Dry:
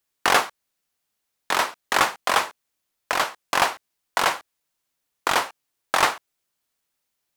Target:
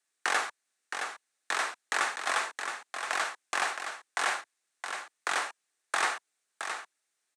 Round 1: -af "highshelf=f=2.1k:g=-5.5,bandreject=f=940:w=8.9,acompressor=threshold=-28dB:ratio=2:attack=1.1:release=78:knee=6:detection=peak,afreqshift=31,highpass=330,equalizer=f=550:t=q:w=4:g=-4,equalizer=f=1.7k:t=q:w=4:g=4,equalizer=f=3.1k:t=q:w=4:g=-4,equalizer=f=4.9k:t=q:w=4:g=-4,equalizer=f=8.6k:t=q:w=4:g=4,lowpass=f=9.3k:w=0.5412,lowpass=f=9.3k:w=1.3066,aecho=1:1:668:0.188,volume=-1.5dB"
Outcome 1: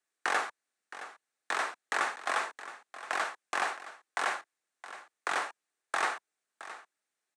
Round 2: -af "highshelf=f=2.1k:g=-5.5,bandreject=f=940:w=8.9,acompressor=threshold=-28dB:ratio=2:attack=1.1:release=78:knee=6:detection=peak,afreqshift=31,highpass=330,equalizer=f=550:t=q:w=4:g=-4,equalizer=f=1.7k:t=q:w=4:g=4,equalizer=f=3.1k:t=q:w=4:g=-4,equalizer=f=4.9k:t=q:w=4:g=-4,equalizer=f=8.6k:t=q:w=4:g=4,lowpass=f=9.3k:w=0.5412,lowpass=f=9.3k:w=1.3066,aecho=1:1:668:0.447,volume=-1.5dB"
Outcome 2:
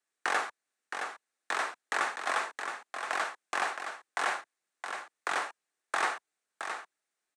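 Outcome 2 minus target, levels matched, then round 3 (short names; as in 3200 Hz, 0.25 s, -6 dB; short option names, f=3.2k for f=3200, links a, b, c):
4000 Hz band -3.0 dB
-af "highshelf=f=2.1k:g=2.5,bandreject=f=940:w=8.9,acompressor=threshold=-28dB:ratio=2:attack=1.1:release=78:knee=6:detection=peak,afreqshift=31,highpass=330,equalizer=f=550:t=q:w=4:g=-4,equalizer=f=1.7k:t=q:w=4:g=4,equalizer=f=3.1k:t=q:w=4:g=-4,equalizer=f=4.9k:t=q:w=4:g=-4,equalizer=f=8.6k:t=q:w=4:g=4,lowpass=f=9.3k:w=0.5412,lowpass=f=9.3k:w=1.3066,aecho=1:1:668:0.447,volume=-1.5dB"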